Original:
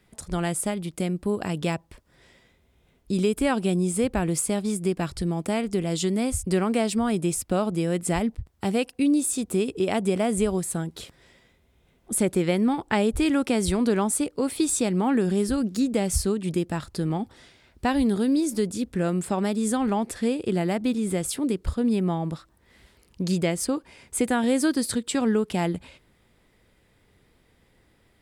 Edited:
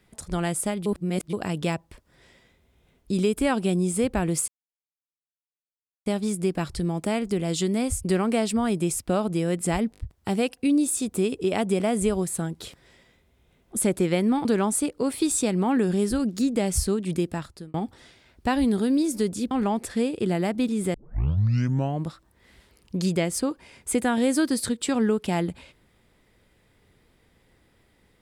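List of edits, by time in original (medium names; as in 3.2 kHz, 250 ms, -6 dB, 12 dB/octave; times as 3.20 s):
0.86–1.33 s: reverse
4.48 s: insert silence 1.58 s
8.34 s: stutter 0.02 s, 4 plays
12.81–13.83 s: delete
16.65–17.12 s: fade out
18.89–19.77 s: delete
21.20 s: tape start 1.11 s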